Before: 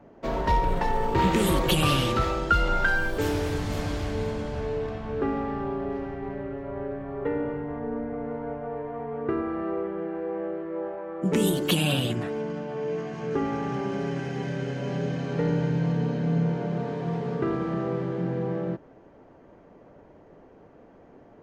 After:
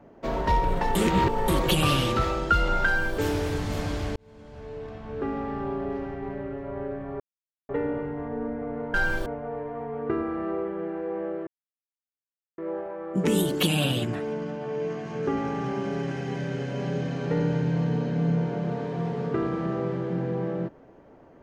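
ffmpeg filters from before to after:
-filter_complex "[0:a]asplit=8[s0][s1][s2][s3][s4][s5][s6][s7];[s0]atrim=end=0.952[s8];[s1]atrim=start=0.948:end=1.482,asetpts=PTS-STARTPTS,areverse[s9];[s2]atrim=start=1.478:end=4.16,asetpts=PTS-STARTPTS,afade=t=out:st=2.678:d=0.004:c=hsin[s10];[s3]atrim=start=4.16:end=7.2,asetpts=PTS-STARTPTS,afade=t=in:d=1.56,afade=t=out:st=3.036:d=0.004:c=hsin,apad=pad_dur=0.49[s11];[s4]atrim=start=7.2:end=8.452,asetpts=PTS-STARTPTS,afade=t=in:d=0.004:c=hsin[s12];[s5]atrim=start=2.858:end=3.182[s13];[s6]atrim=start=8.448:end=10.66,asetpts=PTS-STARTPTS,afade=t=out:st=2.208:d=0.004:c=hsin,apad=pad_dur=1.11[s14];[s7]atrim=start=10.66,asetpts=PTS-STARTPTS,afade=t=in:d=0.004:c=hsin[s15];[s8][s9]acrossfade=d=0.004:c1=hsin:c2=hsin[s16];[s10][s11][s12]concat=n=3:v=0:a=1[s17];[s16][s17]acrossfade=d=0.004:c1=hsin:c2=hsin[s18];[s18][s13]acrossfade=d=0.004:c1=hsin:c2=hsin[s19];[s14][s15]concat=n=2:v=0:a=1[s20];[s19][s20]acrossfade=d=0.004:c1=hsin:c2=hsin"

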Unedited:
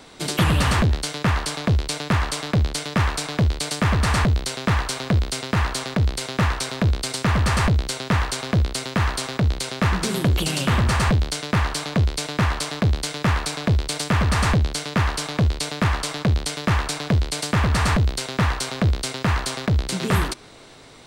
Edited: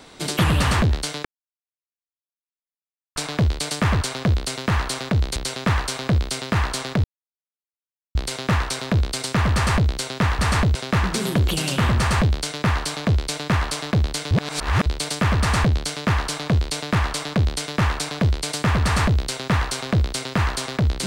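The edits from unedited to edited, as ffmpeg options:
-filter_complex "[0:a]asplit=10[s0][s1][s2][s3][s4][s5][s6][s7][s8][s9];[s0]atrim=end=1.25,asetpts=PTS-STARTPTS,afade=t=out:st=1.246:d=0.004:c=hsin[s10];[s1]atrim=start=1.25:end=3.16,asetpts=PTS-STARTPTS,volume=0[s11];[s2]atrim=start=3.16:end=4.012,asetpts=PTS-STARTPTS,afade=t=in:d=0.004:c=hsin[s12];[s3]atrim=start=8.288:end=9.642[s13];[s4]atrim=start=4.368:end=6.05,asetpts=PTS-STARTPTS,afade=t=out:st=1.678:d=0.004:c=hsin,apad=pad_dur=1.11[s14];[s5]atrim=start=6.05:end=8.292,asetpts=PTS-STARTPTS,afade=t=in:d=0.004:c=hsin[s15];[s6]atrim=start=4.008:end=4.372[s16];[s7]atrim=start=9.638:end=13.202[s17];[s8]atrim=start=13.198:end=13.752,asetpts=PTS-STARTPTS,areverse[s18];[s9]atrim=start=13.748[s19];[s10][s11][s12]concat=n=3:v=0:a=1[s20];[s20][s13]acrossfade=d=0.004:c1=hsin:c2=hsin[s21];[s14][s15]concat=n=2:v=0:a=1[s22];[s21][s22]acrossfade=d=0.004:c1=hsin:c2=hsin[s23];[s23][s16]acrossfade=d=0.004:c1=hsin:c2=hsin[s24];[s24][s17]acrossfade=d=0.004:c1=hsin:c2=hsin[s25];[s25][s18]acrossfade=d=0.004:c1=hsin:c2=hsin[s26];[s26][s19]acrossfade=d=0.004:c1=hsin:c2=hsin"

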